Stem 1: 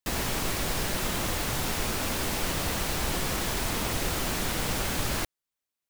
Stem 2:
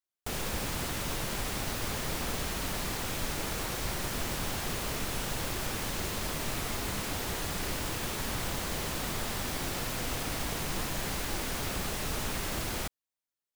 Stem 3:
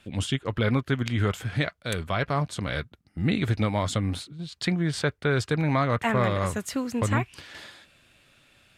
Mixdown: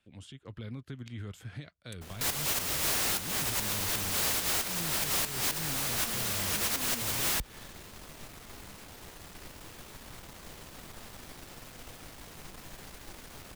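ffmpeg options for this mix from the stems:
-filter_complex "[0:a]highpass=f=43:w=0.5412,highpass=f=43:w=1.3066,aeval=exprs='0.141*sin(PI/2*7.08*val(0)/0.141)':c=same,adelay=2150,volume=0.5dB[a];[1:a]aeval=exprs='(tanh(20*val(0)+0.65)-tanh(0.65))/20':c=same,adelay=1750,volume=-10.5dB[b];[2:a]acrossover=split=350|3000[c][d][e];[d]acompressor=threshold=-37dB:ratio=6[f];[c][f][e]amix=inputs=3:normalize=0,alimiter=limit=-21dB:level=0:latency=1:release=122,dynaudnorm=f=120:g=7:m=6.5dB,volume=-18dB,asplit=2[g][h];[h]apad=whole_len=354834[i];[a][i]sidechaincompress=threshold=-50dB:ratio=8:attack=5.6:release=104[j];[j][b][g]amix=inputs=3:normalize=0,acompressor=threshold=-28dB:ratio=12"

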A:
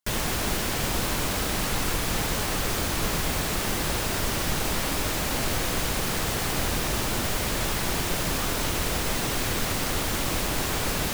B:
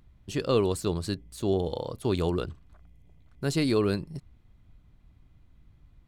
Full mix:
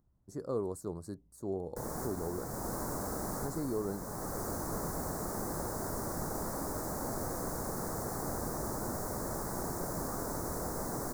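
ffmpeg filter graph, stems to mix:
-filter_complex "[0:a]highshelf=f=4.2k:g=-4.5,adelay=1700,volume=-6dB[a];[1:a]volume=-9.5dB,asplit=2[b][c];[c]apad=whole_len=566181[d];[a][d]sidechaincompress=threshold=-37dB:ratio=8:attack=36:release=738[e];[e][b]amix=inputs=2:normalize=0,asuperstop=centerf=2900:order=4:qfactor=0.52,lowshelf=f=90:g=-10"

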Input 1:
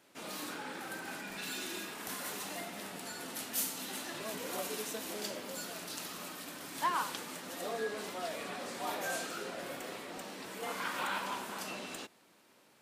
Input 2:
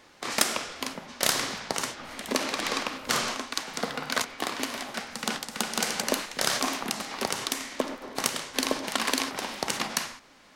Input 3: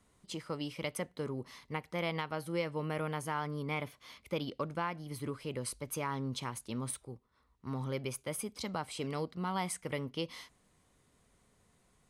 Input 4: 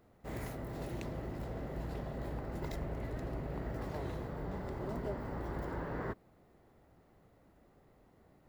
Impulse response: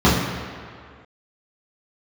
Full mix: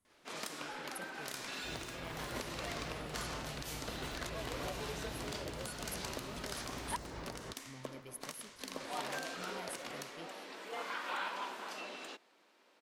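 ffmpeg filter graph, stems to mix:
-filter_complex "[0:a]acrossover=split=260 6000:gain=0.0891 1 0.224[a][b][c];[a][b][c]amix=inputs=3:normalize=0,adelay=100,volume=-2dB,asplit=3[d][e][f];[d]atrim=end=6.96,asetpts=PTS-STARTPTS,afade=t=out:st=6.956:d=0.004:c=hsin[g];[e]atrim=start=6.96:end=8.8,asetpts=PTS-STARTPTS,volume=0[h];[f]atrim=start=8.8,asetpts=PTS-STARTPTS,afade=t=in:d=0.004:c=hsin[i];[g][h][i]concat=n=3:v=0:a=1[j];[1:a]bandreject=f=810:w=12,adelay=50,volume=-15dB[k];[2:a]equalizer=f=11k:w=1.9:g=14,volume=-15dB[l];[3:a]adelay=1400,volume=-6.5dB[m];[j][k][l][m]amix=inputs=4:normalize=0,alimiter=level_in=3dB:limit=-24dB:level=0:latency=1:release=232,volume=-3dB"

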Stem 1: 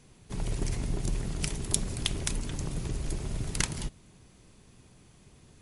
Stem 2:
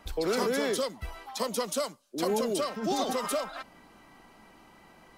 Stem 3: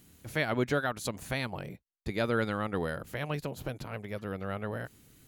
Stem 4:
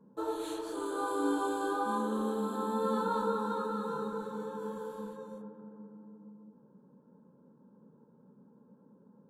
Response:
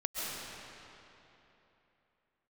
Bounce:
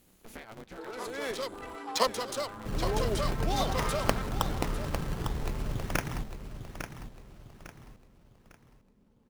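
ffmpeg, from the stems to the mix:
-filter_complex "[0:a]acrusher=samples=21:mix=1:aa=0.000001:lfo=1:lforange=21:lforate=0.48,adelay=2350,volume=-0.5dB,asplit=2[a][b];[b]volume=-9dB[c];[1:a]dynaudnorm=f=260:g=5:m=13dB,highpass=f=700:p=1,adynamicsmooth=sensitivity=4:basefreq=1k,adelay=600,volume=-2dB,asplit=2[d][e];[e]volume=-21dB[f];[2:a]acompressor=threshold=-38dB:ratio=12,aeval=exprs='val(0)*sgn(sin(2*PI*110*n/s))':c=same,volume=-4.5dB,asplit=2[g][h];[3:a]acompressor=threshold=-35dB:ratio=6,adelay=600,volume=-8dB[i];[h]apad=whole_len=254603[j];[d][j]sidechaincompress=threshold=-52dB:ratio=8:attack=26:release=646[k];[c][f]amix=inputs=2:normalize=0,aecho=0:1:852|1704|2556|3408|4260:1|0.34|0.116|0.0393|0.0134[l];[a][k][g][i][l]amix=inputs=5:normalize=0"

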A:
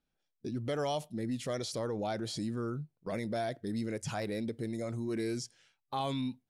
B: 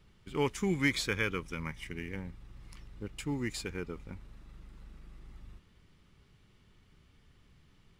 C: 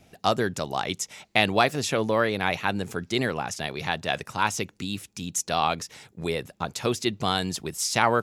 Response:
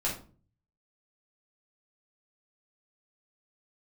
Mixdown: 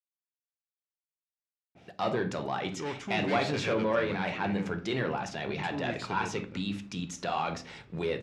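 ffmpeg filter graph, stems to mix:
-filter_complex "[1:a]volume=32.5dB,asoftclip=hard,volume=-32.5dB,adelay=2450,volume=-1dB,asplit=2[a][b];[b]volume=-13.5dB[c];[2:a]asoftclip=type=tanh:threshold=-17.5dB,adynamicequalizer=threshold=0.00631:dfrequency=3200:dqfactor=0.7:tfrequency=3200:tqfactor=0.7:attack=5:release=100:ratio=0.375:range=2.5:mode=cutabove:tftype=highshelf,adelay=1750,volume=0dB,asplit=2[d][e];[e]volume=-13.5dB[f];[d]alimiter=level_in=2dB:limit=-24dB:level=0:latency=1,volume=-2dB,volume=0dB[g];[3:a]atrim=start_sample=2205[h];[c][f]amix=inputs=2:normalize=0[i];[i][h]afir=irnorm=-1:irlink=0[j];[a][g][j]amix=inputs=3:normalize=0,highpass=120,lowpass=4.1k"

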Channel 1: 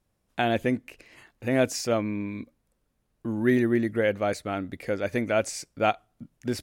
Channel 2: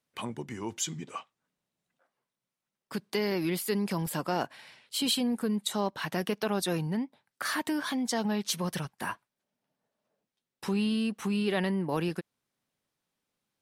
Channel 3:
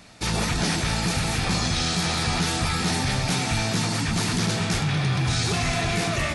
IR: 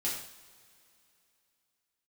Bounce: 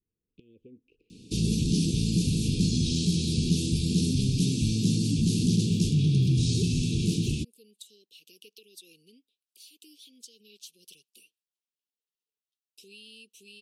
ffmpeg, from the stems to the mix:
-filter_complex "[0:a]lowpass=2.1k,equalizer=f=780:w=0.83:g=14.5,acompressor=threshold=-27dB:ratio=2.5,volume=-15.5dB,asplit=2[a][b];[1:a]highpass=800,adelay=2150,volume=-7.5dB[c];[2:a]equalizer=f=260:w=0.51:g=11.5,acrossover=split=240|3000[d][e][f];[e]acompressor=threshold=-33dB:ratio=2.5[g];[d][g][f]amix=inputs=3:normalize=0,adelay=1100,volume=-5.5dB[h];[b]apad=whole_len=695244[i];[c][i]sidechaincompress=threshold=-59dB:ratio=8:attack=34:release=1030[j];[a][j]amix=inputs=2:normalize=0,acompressor=threshold=-44dB:ratio=5,volume=0dB[k];[h][k]amix=inputs=2:normalize=0,asuperstop=centerf=1100:order=20:qfactor=0.52"

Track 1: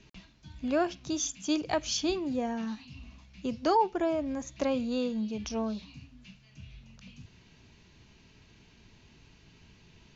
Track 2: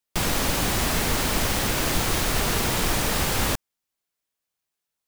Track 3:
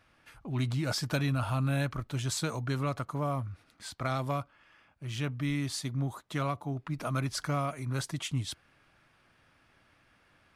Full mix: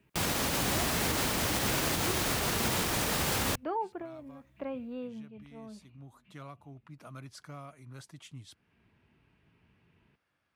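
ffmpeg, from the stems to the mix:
-filter_complex "[0:a]lowpass=f=2.6k:w=0.5412,lowpass=f=2.6k:w=1.3066,volume=-8.5dB[a];[1:a]alimiter=limit=-17.5dB:level=0:latency=1:release=135,volume=-1.5dB[b];[2:a]volume=-14.5dB,afade=t=in:st=5.78:d=0.51:silence=0.354813,asplit=2[c][d];[d]apad=whole_len=447811[e];[a][e]sidechaincompress=threshold=-56dB:ratio=8:attack=6.3:release=350[f];[f][b][c]amix=inputs=3:normalize=0,highpass=68"

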